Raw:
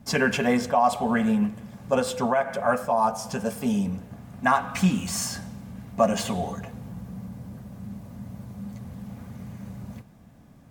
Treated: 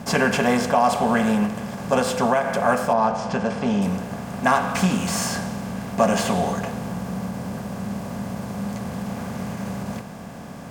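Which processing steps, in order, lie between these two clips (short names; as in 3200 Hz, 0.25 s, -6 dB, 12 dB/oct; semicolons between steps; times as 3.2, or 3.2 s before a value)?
per-bin compression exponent 0.6; 2.93–3.82 air absorption 130 m; ending taper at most 140 dB/s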